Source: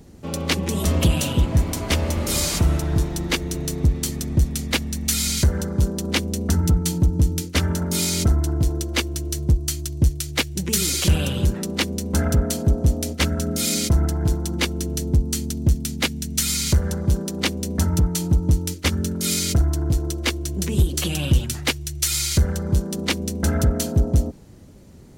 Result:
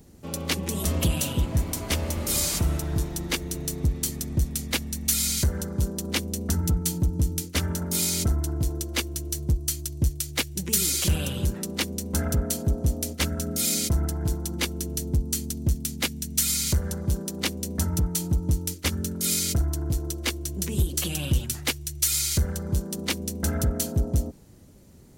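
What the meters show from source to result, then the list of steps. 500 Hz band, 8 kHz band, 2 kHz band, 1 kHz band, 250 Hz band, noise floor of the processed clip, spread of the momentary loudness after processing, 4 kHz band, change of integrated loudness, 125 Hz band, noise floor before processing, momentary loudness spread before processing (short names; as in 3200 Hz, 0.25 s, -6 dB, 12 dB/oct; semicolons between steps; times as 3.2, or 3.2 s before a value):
-6.0 dB, -1.5 dB, -5.5 dB, -6.0 dB, -6.0 dB, -40 dBFS, 6 LU, -4.5 dB, -4.5 dB, -6.0 dB, -35 dBFS, 5 LU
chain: high shelf 8200 Hz +10 dB; gain -6 dB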